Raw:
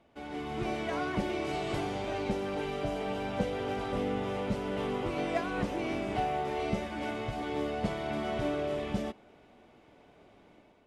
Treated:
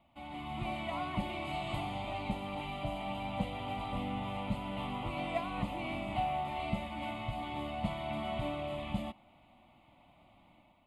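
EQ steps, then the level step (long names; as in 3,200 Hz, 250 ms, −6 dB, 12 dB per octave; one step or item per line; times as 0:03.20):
phaser with its sweep stopped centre 1,600 Hz, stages 6
0.0 dB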